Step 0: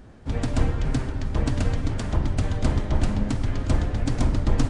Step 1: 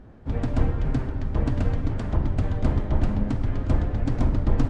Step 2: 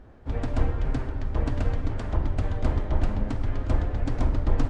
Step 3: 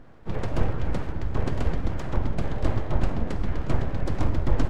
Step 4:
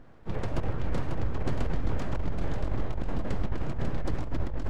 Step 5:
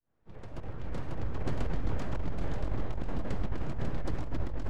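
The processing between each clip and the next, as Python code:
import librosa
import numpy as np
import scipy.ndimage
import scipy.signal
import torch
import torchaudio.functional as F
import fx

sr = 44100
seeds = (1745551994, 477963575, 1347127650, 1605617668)

y1 = fx.lowpass(x, sr, hz=1400.0, slope=6)
y2 = fx.peak_eq(y1, sr, hz=170.0, db=-7.5, octaves=1.5)
y3 = np.abs(y2)
y3 = y3 * 10.0 ** (2.0 / 20.0)
y4 = y3 + 10.0 ** (-5.0 / 20.0) * np.pad(y3, (int(543 * sr / 1000.0), 0))[:len(y3)]
y4 = fx.over_compress(y4, sr, threshold_db=-19.0, ratio=-0.5)
y4 = y4 * 10.0 ** (-4.5 / 20.0)
y5 = fx.fade_in_head(y4, sr, length_s=1.5)
y5 = y5 + 10.0 ** (-19.0 / 20.0) * np.pad(y5, (int(415 * sr / 1000.0), 0))[:len(y5)]
y5 = y5 * 10.0 ** (-3.0 / 20.0)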